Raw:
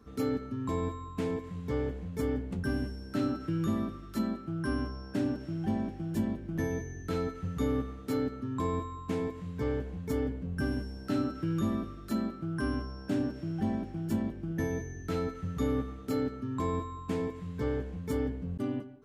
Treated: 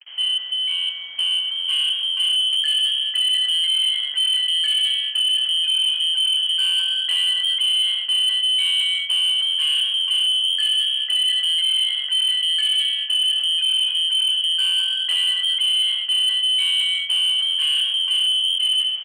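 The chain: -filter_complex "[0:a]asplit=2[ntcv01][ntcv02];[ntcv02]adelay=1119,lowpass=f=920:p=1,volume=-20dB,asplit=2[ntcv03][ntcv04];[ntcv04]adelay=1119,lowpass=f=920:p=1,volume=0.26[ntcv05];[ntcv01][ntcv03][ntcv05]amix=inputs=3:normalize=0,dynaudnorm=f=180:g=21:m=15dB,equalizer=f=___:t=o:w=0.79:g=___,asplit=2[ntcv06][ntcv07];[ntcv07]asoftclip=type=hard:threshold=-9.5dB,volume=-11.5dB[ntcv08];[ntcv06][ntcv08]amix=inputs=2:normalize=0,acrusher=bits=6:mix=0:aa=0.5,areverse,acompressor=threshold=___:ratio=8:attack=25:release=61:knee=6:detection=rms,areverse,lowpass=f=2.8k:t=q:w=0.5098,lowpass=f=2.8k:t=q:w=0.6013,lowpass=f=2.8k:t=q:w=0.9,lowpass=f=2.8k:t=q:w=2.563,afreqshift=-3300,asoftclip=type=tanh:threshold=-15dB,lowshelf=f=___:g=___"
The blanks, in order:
250, 13, -16dB, 340, -4.5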